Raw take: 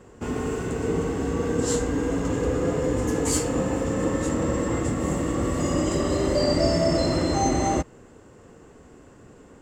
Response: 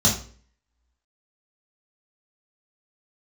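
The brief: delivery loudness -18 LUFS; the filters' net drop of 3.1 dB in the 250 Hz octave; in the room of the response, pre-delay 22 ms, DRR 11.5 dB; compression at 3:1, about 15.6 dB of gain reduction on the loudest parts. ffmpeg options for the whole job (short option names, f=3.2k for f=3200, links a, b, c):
-filter_complex "[0:a]equalizer=f=250:t=o:g=-4,acompressor=threshold=-41dB:ratio=3,asplit=2[a][b];[1:a]atrim=start_sample=2205,adelay=22[c];[b][c]afir=irnorm=-1:irlink=0,volume=-26dB[d];[a][d]amix=inputs=2:normalize=0,volume=20dB"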